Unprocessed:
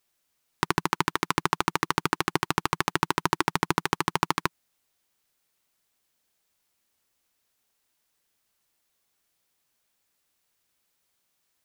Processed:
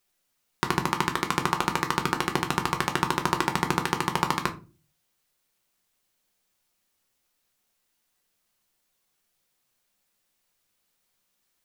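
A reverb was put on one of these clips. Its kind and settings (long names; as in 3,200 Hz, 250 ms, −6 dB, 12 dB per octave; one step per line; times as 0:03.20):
rectangular room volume 150 cubic metres, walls furnished, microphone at 0.94 metres
level −1 dB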